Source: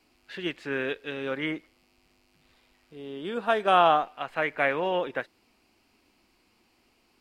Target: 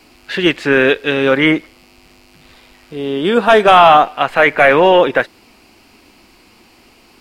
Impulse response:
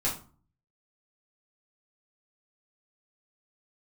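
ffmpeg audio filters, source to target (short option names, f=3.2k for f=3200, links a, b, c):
-af "apsyclip=20.5dB,volume=-1.5dB"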